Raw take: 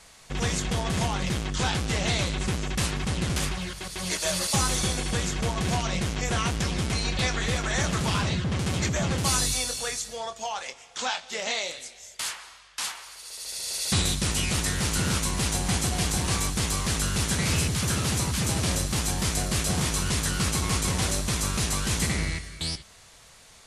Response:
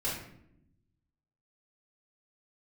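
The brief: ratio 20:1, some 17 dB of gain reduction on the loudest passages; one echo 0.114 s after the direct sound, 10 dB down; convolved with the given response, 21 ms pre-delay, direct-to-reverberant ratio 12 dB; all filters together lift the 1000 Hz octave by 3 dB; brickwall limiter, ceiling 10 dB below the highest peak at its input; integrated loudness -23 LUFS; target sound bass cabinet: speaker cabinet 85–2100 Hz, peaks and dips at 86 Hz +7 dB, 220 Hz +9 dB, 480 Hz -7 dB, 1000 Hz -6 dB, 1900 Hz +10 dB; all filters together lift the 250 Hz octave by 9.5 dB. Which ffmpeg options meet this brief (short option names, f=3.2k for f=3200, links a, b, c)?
-filter_complex "[0:a]equalizer=f=250:t=o:g=6.5,equalizer=f=1k:t=o:g=6.5,acompressor=threshold=-36dB:ratio=20,alimiter=level_in=6.5dB:limit=-24dB:level=0:latency=1,volume=-6.5dB,aecho=1:1:114:0.316,asplit=2[a][b];[1:a]atrim=start_sample=2205,adelay=21[c];[b][c]afir=irnorm=-1:irlink=0,volume=-17.5dB[d];[a][d]amix=inputs=2:normalize=0,highpass=f=85:w=0.5412,highpass=f=85:w=1.3066,equalizer=f=86:t=q:w=4:g=7,equalizer=f=220:t=q:w=4:g=9,equalizer=f=480:t=q:w=4:g=-7,equalizer=f=1k:t=q:w=4:g=-6,equalizer=f=1.9k:t=q:w=4:g=10,lowpass=f=2.1k:w=0.5412,lowpass=f=2.1k:w=1.3066,volume=17.5dB"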